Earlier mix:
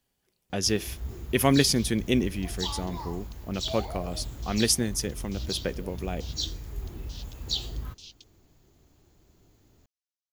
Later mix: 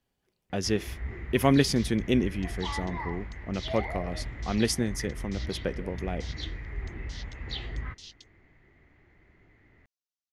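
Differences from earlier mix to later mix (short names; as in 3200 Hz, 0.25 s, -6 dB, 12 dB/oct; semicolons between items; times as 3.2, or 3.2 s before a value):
speech: add high shelf 4400 Hz -10.5 dB; first sound: add synth low-pass 2000 Hz, resonance Q 11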